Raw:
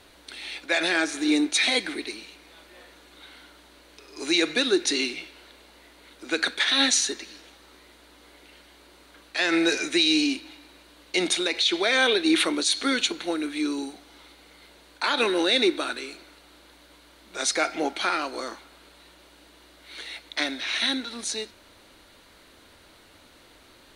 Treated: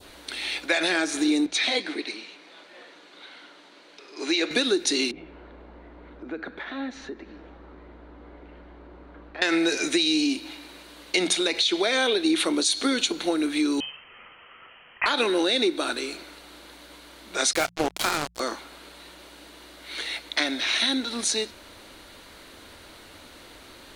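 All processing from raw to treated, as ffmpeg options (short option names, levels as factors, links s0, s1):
-filter_complex "[0:a]asettb=1/sr,asplit=3[s0][s1][s2];[s0]atrim=end=1.464[s3];[s1]atrim=start=1.46:end=4.51,asetpts=PTS-STARTPTS,afade=t=in:d=0.004:c=qsin,afade=t=out:st=3.046:d=0.004:c=qsin,highpass=220,lowpass=5700,flanger=delay=1.2:depth=9.1:regen=-54:speed=1.6:shape=sinusoidal[s4];[s2]atrim=start=4.506[s5];[s3][s4]acrossfade=d=0.004:c1=hsin:c2=qsin[s6];[s6][s5]acrossfade=d=0.004:c1=qsin:c2=hsin,asettb=1/sr,asplit=3[s7][s8][s9];[s7]atrim=end=5.114[s10];[s8]atrim=start=5.11:end=9.42,asetpts=PTS-STARTPTS,afade=t=in:d=0.004:c=qsin,afade=t=out:st=4.306:d=0.004:c=qsin,lowpass=1200,lowshelf=f=180:g=11.5,acompressor=threshold=0.00447:ratio=2:attack=3.2:release=140:knee=1:detection=peak[s11];[s9]atrim=start=9.416[s12];[s10][s11]acrossfade=d=0.004:c1=hsin:c2=qsin[s13];[s13][s12]acrossfade=d=0.004:c1=qsin:c2=hsin,asettb=1/sr,asplit=3[s14][s15][s16];[s14]atrim=end=13.804[s17];[s15]atrim=start=13.8:end=15.06,asetpts=PTS-STARTPTS,afade=t=in:d=0.004:c=qsin,afade=t=out:st=1.256:d=0.004:c=qsin,highpass=f=600:p=1,lowpass=f=2900:t=q:w=0.5098,lowpass=f=2900:t=q:w=0.6013,lowpass=f=2900:t=q:w=0.9,lowpass=f=2900:t=q:w=2.563,afreqshift=-3400[s18];[s16]atrim=start=15.056[s19];[s17][s18]acrossfade=d=0.004:c1=hsin:c2=qsin[s20];[s20][s19]acrossfade=d=0.004:c1=qsin:c2=hsin,asettb=1/sr,asplit=3[s21][s22][s23];[s21]atrim=end=17.534[s24];[s22]atrim=start=17.53:end=18.4,asetpts=PTS-STARTPTS,afade=t=in:d=0.004:c=qsin,afade=t=out:st=0.866:d=0.004:c=qsin,asplit=2[s25][s26];[s26]adelay=27,volume=0.237[s27];[s25][s27]amix=inputs=2:normalize=0,atrim=end_sample=38367,asubboost=boost=9.5:cutoff=150,acrusher=bits=3:mix=0:aa=0.5[s28];[s23]atrim=start=18.396[s29];[s24][s28]acrossfade=d=0.004:c1=hsin:c2=qsin[s30];[s30][s29]acrossfade=d=0.004:c1=qsin:c2=hsin,bandreject=f=57.96:t=h:w=4,bandreject=f=115.92:t=h:w=4,bandreject=f=173.88:t=h:w=4,adynamicequalizer=threshold=0.0112:dfrequency=1900:dqfactor=0.85:tfrequency=1900:tqfactor=0.85:attack=5:release=100:ratio=0.375:range=3:mode=cutabove:tftype=bell,acompressor=threshold=0.0447:ratio=4,volume=2.11"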